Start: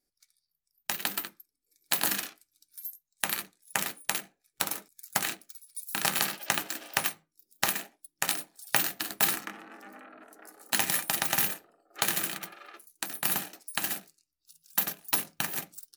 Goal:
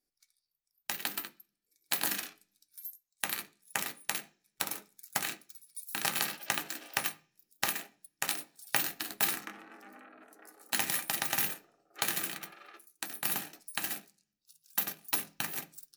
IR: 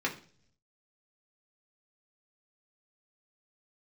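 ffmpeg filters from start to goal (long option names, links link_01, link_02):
-filter_complex "[0:a]asplit=2[link_01][link_02];[1:a]atrim=start_sample=2205,highshelf=frequency=3500:gain=8.5[link_03];[link_02][link_03]afir=irnorm=-1:irlink=0,volume=-16.5dB[link_04];[link_01][link_04]amix=inputs=2:normalize=0,volume=-6dB"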